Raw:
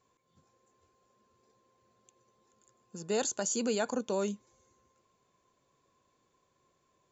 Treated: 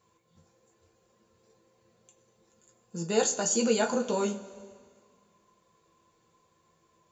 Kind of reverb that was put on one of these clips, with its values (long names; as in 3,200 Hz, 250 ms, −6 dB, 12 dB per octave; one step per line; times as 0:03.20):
coupled-rooms reverb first 0.2 s, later 1.9 s, from −20 dB, DRR 0 dB
level +2 dB